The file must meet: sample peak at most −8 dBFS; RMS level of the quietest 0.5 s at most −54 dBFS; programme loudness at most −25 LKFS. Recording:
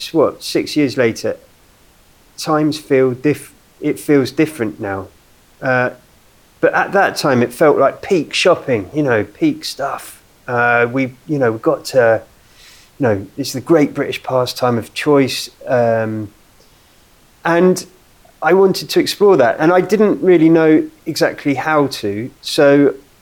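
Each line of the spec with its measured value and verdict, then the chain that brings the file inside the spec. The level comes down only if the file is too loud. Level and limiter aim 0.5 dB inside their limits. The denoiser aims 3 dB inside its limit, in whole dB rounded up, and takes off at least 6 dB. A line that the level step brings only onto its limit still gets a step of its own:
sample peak −1.5 dBFS: out of spec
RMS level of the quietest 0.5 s −49 dBFS: out of spec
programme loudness −15.0 LKFS: out of spec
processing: level −10.5 dB

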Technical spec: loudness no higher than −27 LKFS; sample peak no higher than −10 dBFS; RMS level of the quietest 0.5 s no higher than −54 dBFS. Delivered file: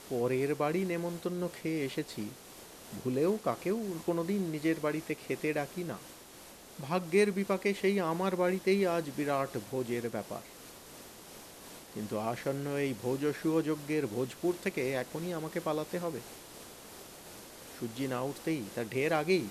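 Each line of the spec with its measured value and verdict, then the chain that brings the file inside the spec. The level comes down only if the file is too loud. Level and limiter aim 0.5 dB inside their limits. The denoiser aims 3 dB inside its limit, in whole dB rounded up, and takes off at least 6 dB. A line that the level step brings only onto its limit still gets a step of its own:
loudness −33.5 LKFS: in spec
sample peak −14.5 dBFS: in spec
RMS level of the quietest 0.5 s −52 dBFS: out of spec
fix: broadband denoise 6 dB, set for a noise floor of −52 dBFS

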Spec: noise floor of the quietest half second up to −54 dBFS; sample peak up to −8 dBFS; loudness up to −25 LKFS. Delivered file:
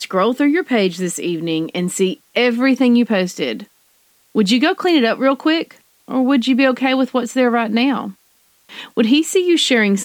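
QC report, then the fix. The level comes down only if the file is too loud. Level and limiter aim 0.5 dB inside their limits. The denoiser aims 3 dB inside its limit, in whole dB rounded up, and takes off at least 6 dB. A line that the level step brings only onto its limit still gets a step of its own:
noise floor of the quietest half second −57 dBFS: in spec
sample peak −4.0 dBFS: out of spec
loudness −16.5 LKFS: out of spec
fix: level −9 dB

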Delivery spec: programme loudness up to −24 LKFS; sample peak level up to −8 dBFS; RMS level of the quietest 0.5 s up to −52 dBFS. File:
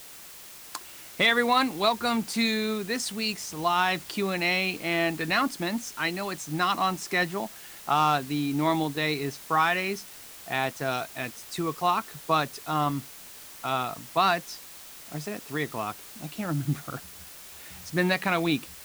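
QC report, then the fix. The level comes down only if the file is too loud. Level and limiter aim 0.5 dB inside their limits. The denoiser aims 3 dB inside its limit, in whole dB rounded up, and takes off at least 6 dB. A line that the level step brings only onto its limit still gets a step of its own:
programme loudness −27.0 LKFS: in spec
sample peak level −12.0 dBFS: in spec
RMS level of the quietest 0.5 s −46 dBFS: out of spec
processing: broadband denoise 9 dB, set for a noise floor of −46 dBFS

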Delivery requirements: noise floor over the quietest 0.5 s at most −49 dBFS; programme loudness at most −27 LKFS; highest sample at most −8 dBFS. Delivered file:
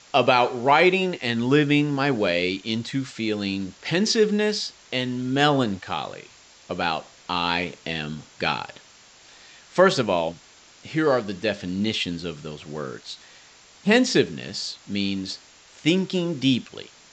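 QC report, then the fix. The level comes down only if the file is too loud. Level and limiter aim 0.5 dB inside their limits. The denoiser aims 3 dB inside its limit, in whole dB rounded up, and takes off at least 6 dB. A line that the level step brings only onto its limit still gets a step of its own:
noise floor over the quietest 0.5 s −51 dBFS: in spec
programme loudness −23.5 LKFS: out of spec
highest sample −4.5 dBFS: out of spec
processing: level −4 dB

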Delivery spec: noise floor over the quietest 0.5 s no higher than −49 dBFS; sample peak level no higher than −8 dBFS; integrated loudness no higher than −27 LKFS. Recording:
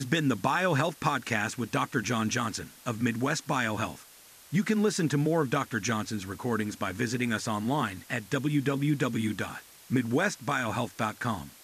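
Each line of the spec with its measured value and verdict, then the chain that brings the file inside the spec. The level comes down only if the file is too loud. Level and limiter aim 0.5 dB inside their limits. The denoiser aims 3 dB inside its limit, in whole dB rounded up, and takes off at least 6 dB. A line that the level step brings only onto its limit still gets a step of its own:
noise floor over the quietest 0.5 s −53 dBFS: in spec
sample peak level −12.0 dBFS: in spec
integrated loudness −29.5 LKFS: in spec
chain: no processing needed

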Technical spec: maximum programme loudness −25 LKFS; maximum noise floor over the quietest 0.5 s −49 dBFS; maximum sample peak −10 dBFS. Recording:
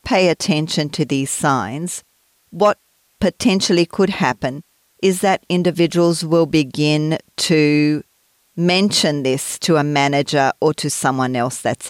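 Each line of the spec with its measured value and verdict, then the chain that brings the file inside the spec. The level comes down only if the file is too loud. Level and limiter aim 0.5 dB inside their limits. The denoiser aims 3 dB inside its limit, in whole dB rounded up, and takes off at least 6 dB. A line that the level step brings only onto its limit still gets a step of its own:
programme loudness −17.0 LKFS: out of spec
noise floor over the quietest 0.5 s −60 dBFS: in spec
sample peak −4.0 dBFS: out of spec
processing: level −8.5 dB

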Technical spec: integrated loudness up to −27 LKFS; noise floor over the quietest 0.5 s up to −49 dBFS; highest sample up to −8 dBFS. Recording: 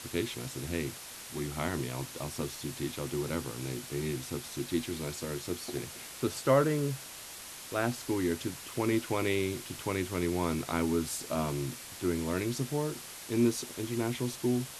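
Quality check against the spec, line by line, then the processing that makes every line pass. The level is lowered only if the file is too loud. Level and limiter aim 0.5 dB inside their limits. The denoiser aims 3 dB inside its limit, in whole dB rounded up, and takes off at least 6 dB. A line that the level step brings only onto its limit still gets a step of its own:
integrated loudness −33.5 LKFS: in spec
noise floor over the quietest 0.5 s −46 dBFS: out of spec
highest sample −12.5 dBFS: in spec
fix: broadband denoise 6 dB, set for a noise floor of −46 dBFS

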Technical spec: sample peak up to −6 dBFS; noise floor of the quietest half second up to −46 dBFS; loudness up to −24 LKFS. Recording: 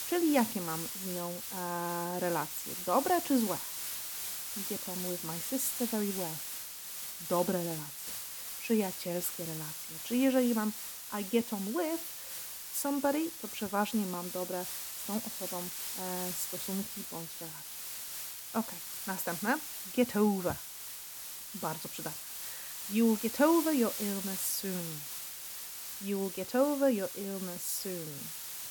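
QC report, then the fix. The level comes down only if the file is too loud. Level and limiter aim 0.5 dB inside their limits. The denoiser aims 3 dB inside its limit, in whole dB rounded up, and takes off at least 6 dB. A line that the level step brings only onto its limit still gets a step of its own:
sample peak −14.0 dBFS: in spec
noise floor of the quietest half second −45 dBFS: out of spec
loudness −33.5 LKFS: in spec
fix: broadband denoise 6 dB, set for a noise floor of −45 dBFS

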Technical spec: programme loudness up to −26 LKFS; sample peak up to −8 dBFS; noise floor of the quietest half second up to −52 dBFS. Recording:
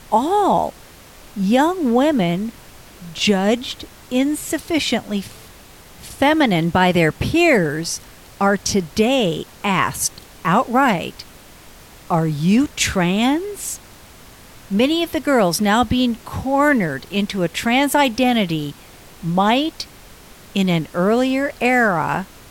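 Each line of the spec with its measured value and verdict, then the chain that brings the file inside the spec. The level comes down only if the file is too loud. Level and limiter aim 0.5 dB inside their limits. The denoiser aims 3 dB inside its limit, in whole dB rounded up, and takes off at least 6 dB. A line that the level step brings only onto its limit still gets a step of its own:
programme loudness −18.5 LKFS: out of spec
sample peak −4.0 dBFS: out of spec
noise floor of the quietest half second −43 dBFS: out of spec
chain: broadband denoise 6 dB, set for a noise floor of −43 dBFS
level −8 dB

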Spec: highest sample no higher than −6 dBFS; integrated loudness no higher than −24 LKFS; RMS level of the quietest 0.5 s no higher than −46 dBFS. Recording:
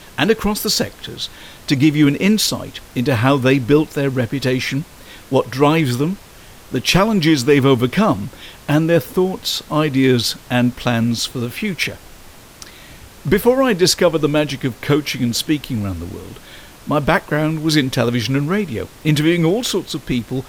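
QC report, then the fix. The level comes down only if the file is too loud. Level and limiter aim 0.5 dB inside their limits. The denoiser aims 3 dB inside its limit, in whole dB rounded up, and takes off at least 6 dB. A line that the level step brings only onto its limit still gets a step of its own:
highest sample −2.0 dBFS: out of spec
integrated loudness −17.5 LKFS: out of spec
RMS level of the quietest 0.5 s −41 dBFS: out of spec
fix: level −7 dB

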